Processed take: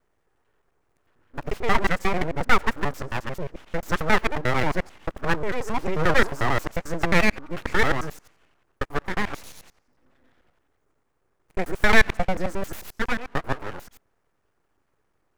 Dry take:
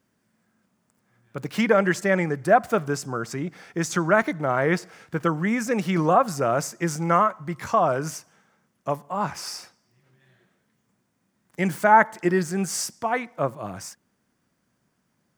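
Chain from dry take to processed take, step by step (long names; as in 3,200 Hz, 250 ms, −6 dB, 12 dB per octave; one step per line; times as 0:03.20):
reversed piece by piece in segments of 89 ms
high shelf with overshoot 1,800 Hz −9 dB, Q 1.5
full-wave rectification
level +1.5 dB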